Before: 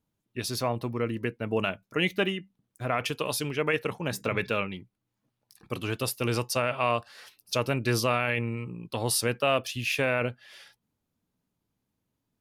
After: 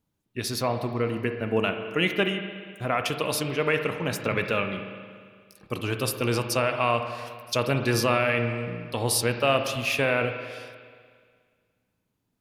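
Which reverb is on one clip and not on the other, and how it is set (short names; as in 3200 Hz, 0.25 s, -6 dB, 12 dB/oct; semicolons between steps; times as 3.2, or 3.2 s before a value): spring tank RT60 1.9 s, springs 36/59 ms, chirp 25 ms, DRR 6.5 dB; gain +2 dB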